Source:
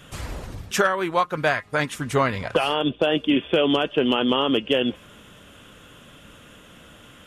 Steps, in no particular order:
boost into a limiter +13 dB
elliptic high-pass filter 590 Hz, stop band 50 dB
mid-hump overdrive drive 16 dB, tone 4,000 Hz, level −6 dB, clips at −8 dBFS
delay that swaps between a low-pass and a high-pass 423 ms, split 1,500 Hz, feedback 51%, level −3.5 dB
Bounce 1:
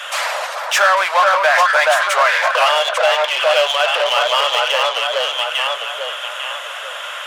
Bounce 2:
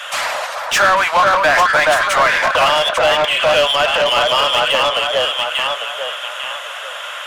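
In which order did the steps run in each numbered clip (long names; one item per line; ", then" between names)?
delay that swaps between a low-pass and a high-pass, then boost into a limiter, then mid-hump overdrive, then elliptic high-pass filter
delay that swaps between a low-pass and a high-pass, then boost into a limiter, then elliptic high-pass filter, then mid-hump overdrive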